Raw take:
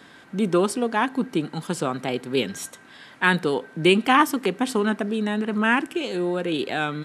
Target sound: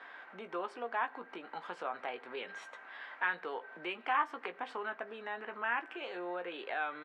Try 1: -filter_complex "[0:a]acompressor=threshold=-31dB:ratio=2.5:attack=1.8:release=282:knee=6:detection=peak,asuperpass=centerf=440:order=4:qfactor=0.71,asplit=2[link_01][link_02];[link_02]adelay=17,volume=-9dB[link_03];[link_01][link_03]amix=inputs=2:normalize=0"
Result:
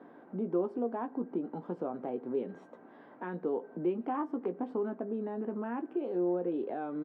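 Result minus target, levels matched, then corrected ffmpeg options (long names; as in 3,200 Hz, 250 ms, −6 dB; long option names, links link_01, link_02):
1,000 Hz band −7.5 dB
-filter_complex "[0:a]acompressor=threshold=-31dB:ratio=2.5:attack=1.8:release=282:knee=6:detection=peak,asuperpass=centerf=1200:order=4:qfactor=0.71,asplit=2[link_01][link_02];[link_02]adelay=17,volume=-9dB[link_03];[link_01][link_03]amix=inputs=2:normalize=0"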